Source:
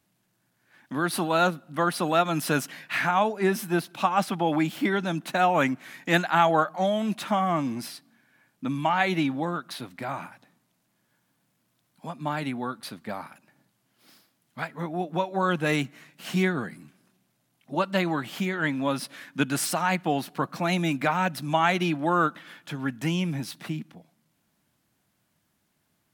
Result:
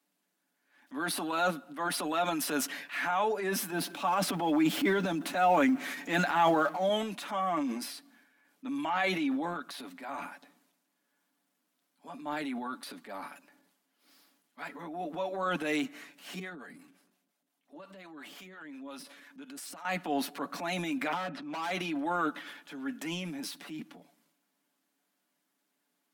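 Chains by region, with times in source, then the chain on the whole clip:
0:03.72–0:06.89: mu-law and A-law mismatch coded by mu + low-shelf EQ 390 Hz +6.5 dB
0:16.39–0:19.85: downward compressor 8 to 1, threshold −33 dBFS + two-band tremolo in antiphase 5.7 Hz, crossover 470 Hz
0:21.12–0:21.71: low-pass filter 2,300 Hz + hard clipping −25.5 dBFS
whole clip: Butterworth high-pass 200 Hz 48 dB per octave; comb filter 7 ms, depth 57%; transient designer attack −5 dB, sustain +8 dB; level −7 dB

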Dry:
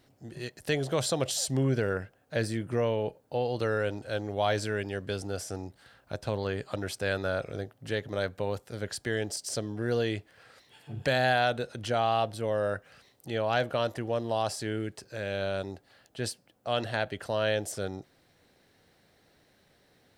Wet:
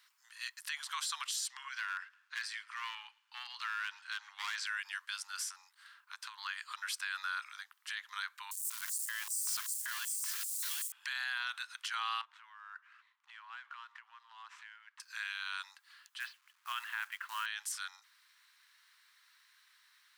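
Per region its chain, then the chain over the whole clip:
0:01.48–0:04.67: three-way crossover with the lows and the highs turned down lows −16 dB, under 490 Hz, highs −16 dB, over 6,500 Hz + gain into a clipping stage and back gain 27.5 dB + delay with a high-pass on its return 112 ms, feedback 40%, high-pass 1,600 Hz, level −22.5 dB
0:05.48–0:06.38: downward compressor 4 to 1, threshold −34 dBFS + one half of a high-frequency compander decoder only
0:08.51–0:10.92: spike at every zero crossing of −25 dBFS + single-tap delay 761 ms −6.5 dB + auto-filter high-pass square 2.6 Hz 740–8,000 Hz
0:12.21–0:15.00: running median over 9 samples + downward compressor 12 to 1, threshold −34 dBFS + head-to-tape spacing loss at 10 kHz 23 dB
0:16.20–0:17.46: low-pass filter 2,800 Hz 24 dB per octave + log-companded quantiser 6 bits
whole clip: Butterworth high-pass 1,000 Hz 72 dB per octave; brickwall limiter −29.5 dBFS; level +2 dB

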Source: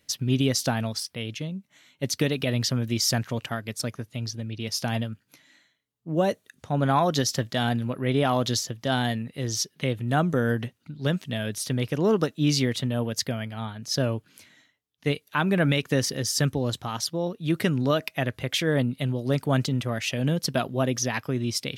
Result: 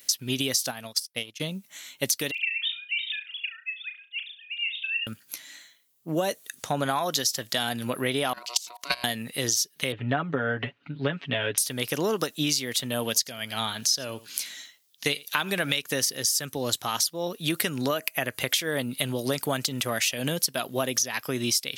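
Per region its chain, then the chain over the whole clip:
0:00.69–0:01.40: transient designer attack +9 dB, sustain +2 dB + expander for the loud parts 2.5 to 1, over −40 dBFS
0:02.31–0:05.07: three sine waves on the formant tracks + Chebyshev high-pass filter 2,600 Hz, order 4 + flutter between parallel walls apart 6 metres, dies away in 0.28 s
0:08.33–0:09.04: dynamic equaliser 3,600 Hz, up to +6 dB, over −44 dBFS, Q 1.1 + output level in coarse steps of 22 dB + ring modulation 840 Hz
0:09.92–0:11.58: low-pass filter 2,800 Hz 24 dB per octave + de-essing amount 75% + comb filter 7.1 ms, depth 75%
0:12.99–0:15.79: parametric band 4,600 Hz +6.5 dB 1.7 octaves + single-tap delay 83 ms −23.5 dB
0:17.88–0:18.38: parametric band 3,700 Hz −11.5 dB 0.29 octaves + notch filter 5,400 Hz, Q 6.5
whole clip: RIAA equalisation recording; downward compressor 12 to 1, threshold −30 dBFS; level +7.5 dB

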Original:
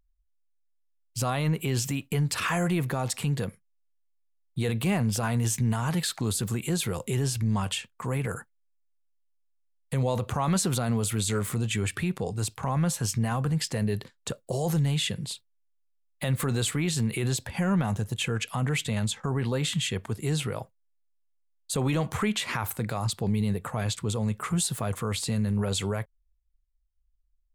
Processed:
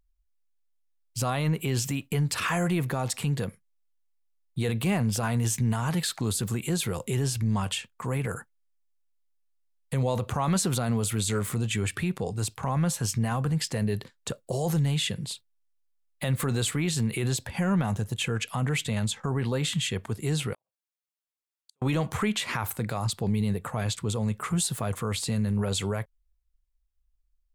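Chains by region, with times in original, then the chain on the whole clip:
0:20.53–0:21.82: high-pass filter 660 Hz 6 dB per octave + downward compressor 10 to 1, threshold −43 dBFS + gate with flip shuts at −37 dBFS, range −36 dB
whole clip: no processing

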